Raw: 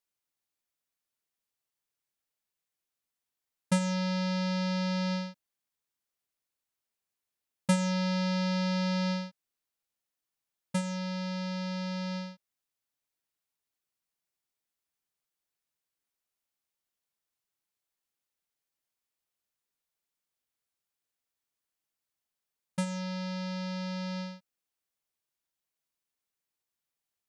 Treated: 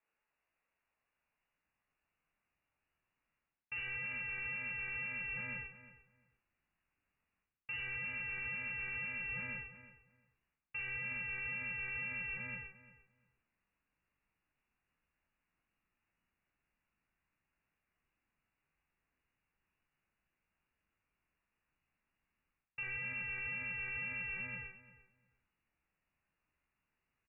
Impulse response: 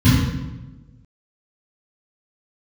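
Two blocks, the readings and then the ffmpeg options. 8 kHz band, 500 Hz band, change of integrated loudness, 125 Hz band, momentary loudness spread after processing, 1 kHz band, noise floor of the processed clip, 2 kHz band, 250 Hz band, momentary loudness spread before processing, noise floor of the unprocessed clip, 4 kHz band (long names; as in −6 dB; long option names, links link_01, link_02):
below −30 dB, −21.5 dB, −7.5 dB, −19.5 dB, 8 LU, −17.0 dB, below −85 dBFS, +4.0 dB, −27.0 dB, 9 LU, below −85 dBFS, −18.5 dB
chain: -filter_complex "[0:a]asplit=2[link_01][link_02];[link_02]adelay=40,volume=-2.5dB[link_03];[link_01][link_03]amix=inputs=2:normalize=0,flanger=delay=15:depth=7.7:speed=2,aeval=exprs='clip(val(0),-1,0.0376)':channel_layout=same,lowpass=frequency=2500:width_type=q:width=0.5098,lowpass=frequency=2500:width_type=q:width=0.6013,lowpass=frequency=2500:width_type=q:width=0.9,lowpass=frequency=2500:width_type=q:width=2.563,afreqshift=-2900,equalizer=frequency=110:width_type=o:width=0.59:gain=-5,asplit=2[link_04][link_05];[link_05]adelay=348,lowpass=frequency=1500:poles=1,volume=-10dB,asplit=2[link_06][link_07];[link_07]adelay=348,lowpass=frequency=1500:poles=1,volume=0.2,asplit=2[link_08][link_09];[link_09]adelay=348,lowpass=frequency=1500:poles=1,volume=0.2[link_10];[link_04][link_06][link_08][link_10]amix=inputs=4:normalize=0,areverse,acompressor=threshold=-45dB:ratio=5,areverse,alimiter=level_in=21dB:limit=-24dB:level=0:latency=1:release=19,volume=-21dB,asubboost=boost=7:cutoff=190,volume=10.5dB"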